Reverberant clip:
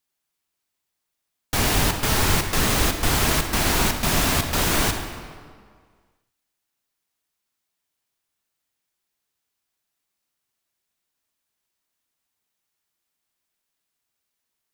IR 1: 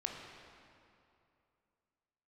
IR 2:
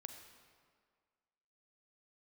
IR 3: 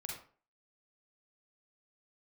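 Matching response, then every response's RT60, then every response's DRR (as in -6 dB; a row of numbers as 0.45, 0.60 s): 2; 2.6, 1.9, 0.45 s; 0.5, 5.5, -1.5 dB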